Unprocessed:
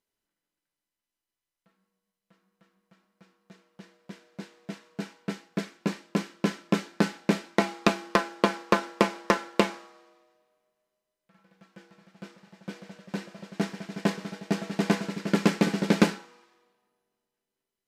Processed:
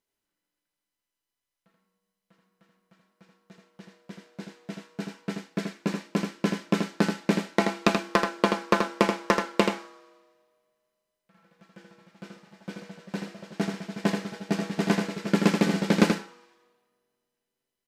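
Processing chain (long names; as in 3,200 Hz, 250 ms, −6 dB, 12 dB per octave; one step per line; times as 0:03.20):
single-tap delay 81 ms −5.5 dB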